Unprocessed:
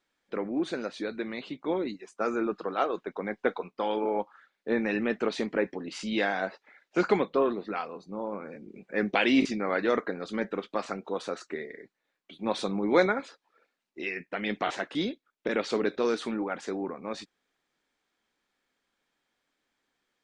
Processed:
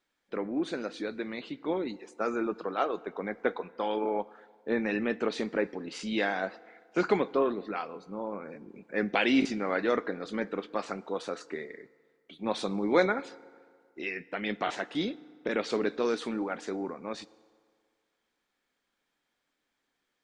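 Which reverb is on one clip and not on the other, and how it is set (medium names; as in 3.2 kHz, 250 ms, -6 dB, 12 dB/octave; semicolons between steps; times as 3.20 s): FDN reverb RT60 2 s, low-frequency decay 0.85×, high-frequency decay 0.65×, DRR 19 dB; trim -1.5 dB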